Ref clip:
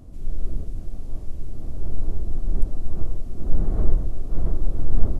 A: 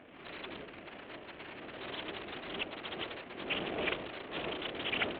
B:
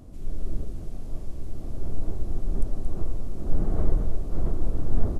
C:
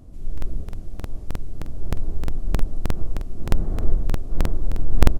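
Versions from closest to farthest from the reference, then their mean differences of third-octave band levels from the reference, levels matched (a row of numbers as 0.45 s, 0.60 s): B, C, A; 1.5 dB, 6.0 dB, 13.0 dB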